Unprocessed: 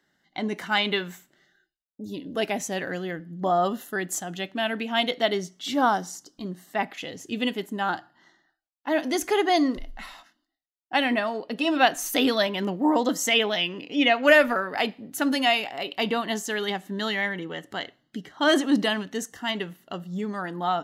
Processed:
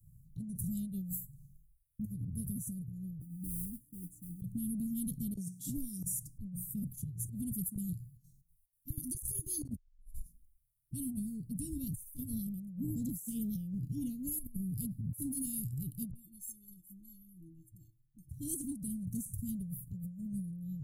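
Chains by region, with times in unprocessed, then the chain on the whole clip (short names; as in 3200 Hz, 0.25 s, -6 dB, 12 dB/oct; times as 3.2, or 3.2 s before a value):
3.19–4.42 vowel filter u + bell 700 Hz +13 dB 1.1 oct + modulation noise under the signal 25 dB
5.35–6.04 weighting filter A + three-band squash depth 100%
7.51–9.69 tilt shelf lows -5 dB, about 750 Hz + chopper 4.1 Hz, depth 65%, duty 70%
16.11–18.31 metallic resonator 320 Hz, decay 0.23 s, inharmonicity 0.03 + dispersion highs, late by 41 ms, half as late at 450 Hz
whole clip: Chebyshev band-stop 130–9500 Hz, order 4; tilt -2 dB/oct; negative-ratio compressor -57 dBFS, ratio -1; gain +13 dB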